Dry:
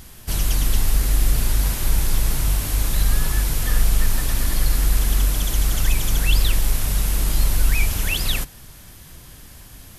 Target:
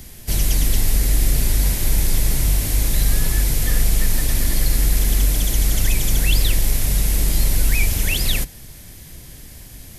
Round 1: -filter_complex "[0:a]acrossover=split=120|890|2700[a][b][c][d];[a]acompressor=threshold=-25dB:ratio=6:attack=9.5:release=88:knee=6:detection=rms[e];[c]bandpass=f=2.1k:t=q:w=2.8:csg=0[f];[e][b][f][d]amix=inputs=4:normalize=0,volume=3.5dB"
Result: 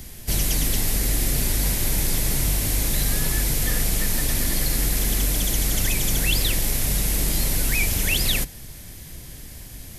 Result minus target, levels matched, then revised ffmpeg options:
compressor: peak gain reduction +8.5 dB
-filter_complex "[0:a]acrossover=split=120|890|2700[a][b][c][d];[a]acompressor=threshold=-14.5dB:ratio=6:attack=9.5:release=88:knee=6:detection=rms[e];[c]bandpass=f=2.1k:t=q:w=2.8:csg=0[f];[e][b][f][d]amix=inputs=4:normalize=0,volume=3.5dB"

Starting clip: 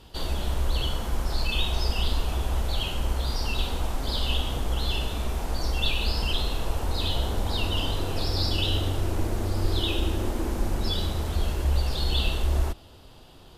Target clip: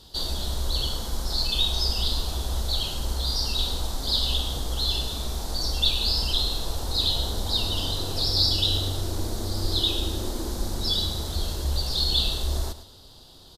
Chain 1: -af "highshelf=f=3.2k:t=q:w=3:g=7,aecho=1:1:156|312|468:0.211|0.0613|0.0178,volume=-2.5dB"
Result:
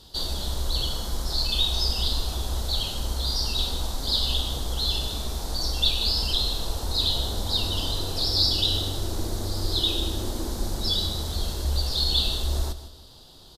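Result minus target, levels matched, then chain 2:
echo 47 ms late
-af "highshelf=f=3.2k:t=q:w=3:g=7,aecho=1:1:109|218|327:0.211|0.0613|0.0178,volume=-2.5dB"

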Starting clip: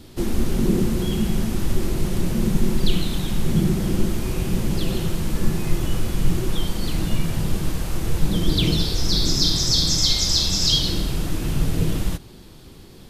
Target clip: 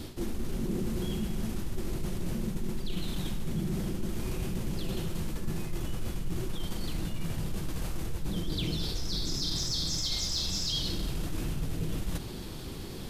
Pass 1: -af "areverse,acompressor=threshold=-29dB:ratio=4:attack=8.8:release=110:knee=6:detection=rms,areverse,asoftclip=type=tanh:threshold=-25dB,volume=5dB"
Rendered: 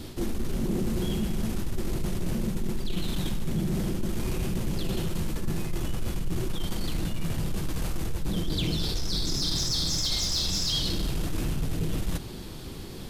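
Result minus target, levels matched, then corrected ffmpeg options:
compressor: peak gain reduction -5 dB
-af "areverse,acompressor=threshold=-36dB:ratio=4:attack=8.8:release=110:knee=6:detection=rms,areverse,asoftclip=type=tanh:threshold=-25dB,volume=5dB"

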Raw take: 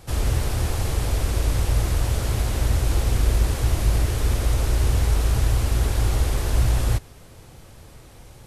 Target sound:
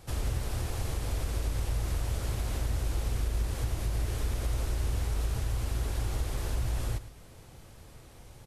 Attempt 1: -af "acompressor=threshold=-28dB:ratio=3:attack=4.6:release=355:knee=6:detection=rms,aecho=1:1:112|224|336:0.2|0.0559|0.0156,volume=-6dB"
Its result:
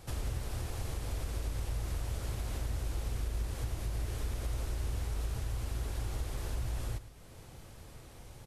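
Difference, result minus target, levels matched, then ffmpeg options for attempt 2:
compressor: peak gain reduction +5 dB
-af "acompressor=threshold=-20.5dB:ratio=3:attack=4.6:release=355:knee=6:detection=rms,aecho=1:1:112|224|336:0.2|0.0559|0.0156,volume=-6dB"

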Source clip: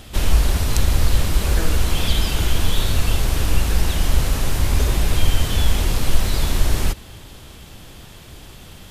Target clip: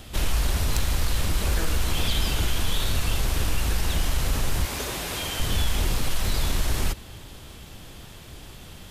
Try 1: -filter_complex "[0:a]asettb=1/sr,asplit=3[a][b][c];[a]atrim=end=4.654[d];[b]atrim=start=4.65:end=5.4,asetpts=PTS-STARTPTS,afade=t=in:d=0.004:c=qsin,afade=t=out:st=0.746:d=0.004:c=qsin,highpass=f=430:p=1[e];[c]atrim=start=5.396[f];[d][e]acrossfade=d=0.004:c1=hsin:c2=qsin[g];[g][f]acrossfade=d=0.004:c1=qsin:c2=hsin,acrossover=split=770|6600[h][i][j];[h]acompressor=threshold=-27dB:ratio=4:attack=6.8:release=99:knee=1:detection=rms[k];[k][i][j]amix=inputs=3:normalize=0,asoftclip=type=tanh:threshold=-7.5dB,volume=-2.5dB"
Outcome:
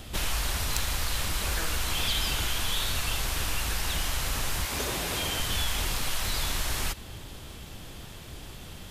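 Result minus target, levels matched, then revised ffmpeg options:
compressor: peak gain reduction +8 dB
-filter_complex "[0:a]asettb=1/sr,asplit=3[a][b][c];[a]atrim=end=4.654[d];[b]atrim=start=4.65:end=5.4,asetpts=PTS-STARTPTS,afade=t=in:d=0.004:c=qsin,afade=t=out:st=0.746:d=0.004:c=qsin,highpass=f=430:p=1[e];[c]atrim=start=5.396[f];[d][e]acrossfade=d=0.004:c1=hsin:c2=qsin[g];[g][f]acrossfade=d=0.004:c1=qsin:c2=hsin,acrossover=split=770|6600[h][i][j];[h]acompressor=threshold=-16dB:ratio=4:attack=6.8:release=99:knee=1:detection=rms[k];[k][i][j]amix=inputs=3:normalize=0,asoftclip=type=tanh:threshold=-7.5dB,volume=-2.5dB"

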